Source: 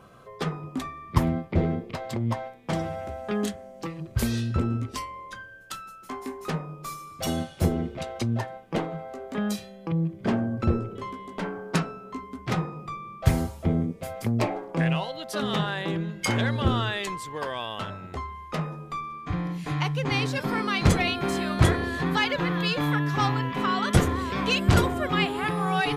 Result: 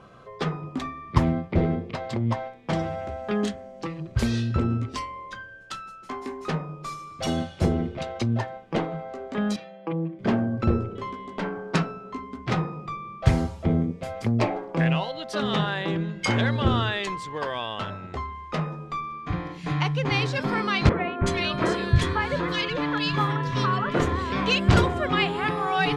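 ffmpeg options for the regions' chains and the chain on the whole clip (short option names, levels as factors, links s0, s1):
-filter_complex "[0:a]asettb=1/sr,asplit=3[s0][s1][s2];[s0]atrim=end=9.564[s3];[s1]atrim=start=9.56:end=10.19,asetpts=PTS-STARTPTS,afade=t=in:d=0.004:c=qsin,afade=t=out:st=0.626:d=0.004:c=qsin,highpass=300,lowpass=2800,aecho=1:1:6.3:0.68,atrim=end_sample=27783[s4];[s2]atrim=start=10.186[s5];[s3][s4]acrossfade=d=0.004:c1=hsin:c2=qsin[s6];[s6][s5]acrossfade=d=0.004:c1=qsin:c2=hsin,asettb=1/sr,asplit=3[s7][s8][s9];[s7]atrim=end=20.894[s10];[s8]atrim=start=20.89:end=24,asetpts=PTS-STARTPTS,afade=t=in:d=0.004:c=qsin,afade=t=out:st=3.106:d=0.004:c=qsin,asuperstop=centerf=780:order=4:qfactor=7.8,acrossover=split=190|2000[s11][s12][s13];[s11]adelay=320[s14];[s13]adelay=370[s15];[s14][s12][s15]amix=inputs=3:normalize=0,atrim=end_sample=137151[s16];[s9]atrim=start=23.996[s17];[s10][s16]acrossfade=d=0.004:c1=hsin:c2=qsin[s18];[s18][s17]acrossfade=d=0.004:c1=qsin:c2=hsin,lowpass=5900,bandreject=f=87.37:t=h:w=4,bandreject=f=174.74:t=h:w=4,bandreject=f=262.11:t=h:w=4,volume=1.26"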